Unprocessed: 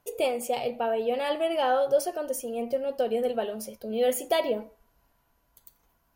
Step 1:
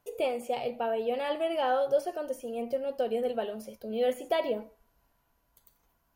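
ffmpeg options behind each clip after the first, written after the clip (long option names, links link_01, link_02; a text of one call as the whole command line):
ffmpeg -i in.wav -filter_complex "[0:a]acrossover=split=3400[link_01][link_02];[link_02]acompressor=threshold=-46dB:ratio=4:attack=1:release=60[link_03];[link_01][link_03]amix=inputs=2:normalize=0,volume=-3dB" out.wav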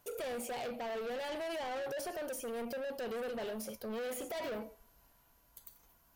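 ffmpeg -i in.wav -af "highshelf=frequency=3900:gain=7.5,alimiter=level_in=1.5dB:limit=-24dB:level=0:latency=1:release=40,volume=-1.5dB,asoftclip=type=tanh:threshold=-39.5dB,volume=2.5dB" out.wav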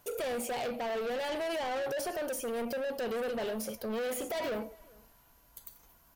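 ffmpeg -i in.wav -filter_complex "[0:a]asplit=2[link_01][link_02];[link_02]adelay=402.3,volume=-25dB,highshelf=frequency=4000:gain=-9.05[link_03];[link_01][link_03]amix=inputs=2:normalize=0,volume=5dB" out.wav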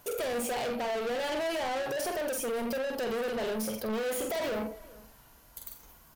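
ffmpeg -i in.wav -filter_complex "[0:a]asplit=2[link_01][link_02];[link_02]adelay=46,volume=-5dB[link_03];[link_01][link_03]amix=inputs=2:normalize=0,asoftclip=type=tanh:threshold=-34.5dB,volume=5.5dB" out.wav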